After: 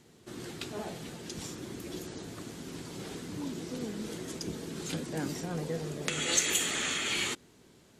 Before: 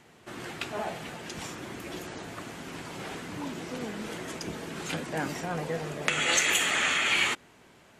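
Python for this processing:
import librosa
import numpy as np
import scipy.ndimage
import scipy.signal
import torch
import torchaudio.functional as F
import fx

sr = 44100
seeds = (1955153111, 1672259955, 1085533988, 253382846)

y = fx.band_shelf(x, sr, hz=1300.0, db=-9.0, octaves=2.6)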